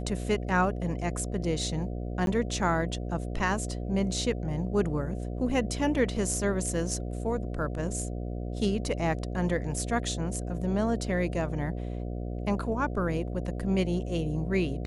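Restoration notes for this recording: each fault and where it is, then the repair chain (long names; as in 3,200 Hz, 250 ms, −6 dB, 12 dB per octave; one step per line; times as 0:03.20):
mains buzz 60 Hz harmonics 12 −34 dBFS
0:02.26–0:02.27: drop-out 12 ms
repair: hum removal 60 Hz, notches 12
repair the gap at 0:02.26, 12 ms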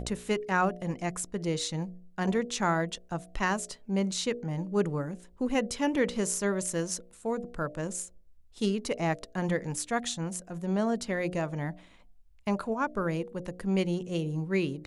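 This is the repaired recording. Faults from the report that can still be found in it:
none of them is left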